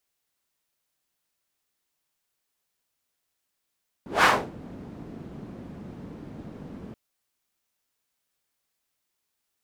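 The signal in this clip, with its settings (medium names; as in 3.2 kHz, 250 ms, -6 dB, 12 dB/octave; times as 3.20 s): whoosh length 2.88 s, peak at 0.18 s, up 0.17 s, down 0.30 s, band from 220 Hz, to 1.3 kHz, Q 1.4, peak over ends 24 dB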